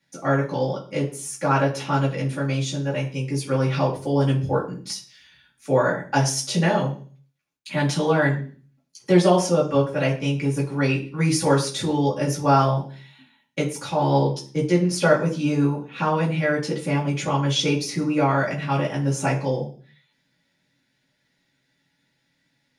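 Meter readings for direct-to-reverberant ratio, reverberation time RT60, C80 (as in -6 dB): -7.0 dB, 0.40 s, 14.5 dB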